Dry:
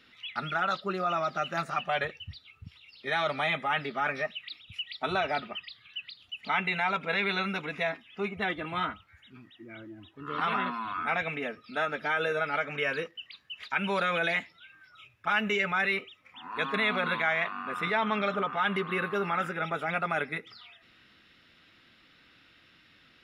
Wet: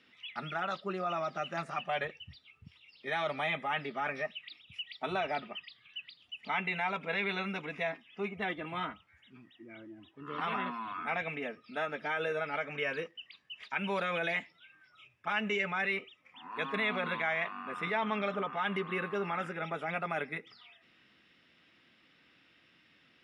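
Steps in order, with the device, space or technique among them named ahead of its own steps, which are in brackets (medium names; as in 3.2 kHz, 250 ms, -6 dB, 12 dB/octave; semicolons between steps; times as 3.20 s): car door speaker (cabinet simulation 88–9400 Hz, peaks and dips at 100 Hz -7 dB, 1.4 kHz -5 dB, 4.1 kHz -7 dB, 6.8 kHz -4 dB); trim -3.5 dB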